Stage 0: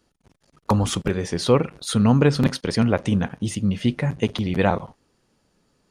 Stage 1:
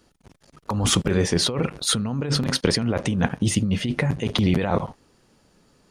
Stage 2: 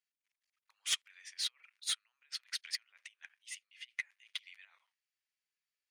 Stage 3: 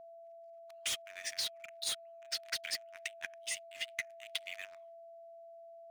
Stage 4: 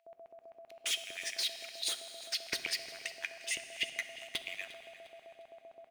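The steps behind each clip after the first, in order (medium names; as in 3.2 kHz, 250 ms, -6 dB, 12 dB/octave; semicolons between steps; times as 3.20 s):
compressor with a negative ratio -24 dBFS, ratio -1; trim +2.5 dB
ladder high-pass 1.8 kHz, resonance 50%; saturation -20.5 dBFS, distortion -18 dB; upward expansion 2.5:1, over -42 dBFS
waveshaping leveller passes 3; compression 10:1, threshold -36 dBFS, peak gain reduction 11.5 dB; whistle 670 Hz -52 dBFS; trim +1.5 dB
LFO high-pass square 7.7 Hz 360–2400 Hz; feedback delay 352 ms, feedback 36%, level -17 dB; on a send at -8.5 dB: reverberation RT60 3.1 s, pre-delay 3 ms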